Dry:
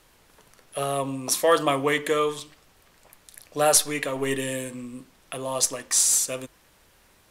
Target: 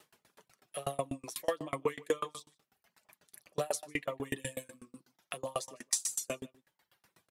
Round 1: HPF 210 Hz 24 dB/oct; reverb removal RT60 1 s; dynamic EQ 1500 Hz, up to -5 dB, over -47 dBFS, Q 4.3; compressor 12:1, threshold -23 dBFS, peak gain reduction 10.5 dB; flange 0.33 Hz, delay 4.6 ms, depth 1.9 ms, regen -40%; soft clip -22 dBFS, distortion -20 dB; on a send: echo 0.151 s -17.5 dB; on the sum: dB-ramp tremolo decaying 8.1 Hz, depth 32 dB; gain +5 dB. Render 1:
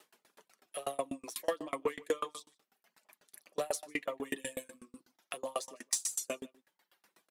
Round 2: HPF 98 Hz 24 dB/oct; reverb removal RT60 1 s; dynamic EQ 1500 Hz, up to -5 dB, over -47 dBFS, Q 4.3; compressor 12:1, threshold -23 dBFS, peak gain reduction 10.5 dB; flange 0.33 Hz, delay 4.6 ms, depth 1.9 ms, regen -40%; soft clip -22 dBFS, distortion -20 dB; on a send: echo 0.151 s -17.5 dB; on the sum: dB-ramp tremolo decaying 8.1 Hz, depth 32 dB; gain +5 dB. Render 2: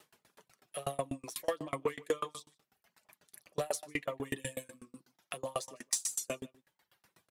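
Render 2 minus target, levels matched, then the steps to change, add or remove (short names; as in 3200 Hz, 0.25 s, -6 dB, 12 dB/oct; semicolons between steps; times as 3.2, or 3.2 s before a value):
soft clip: distortion +15 dB
change: soft clip -13 dBFS, distortion -35 dB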